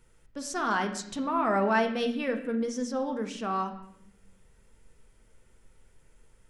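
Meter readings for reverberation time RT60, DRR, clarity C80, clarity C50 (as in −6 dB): 0.75 s, 4.5 dB, 12.5 dB, 10.0 dB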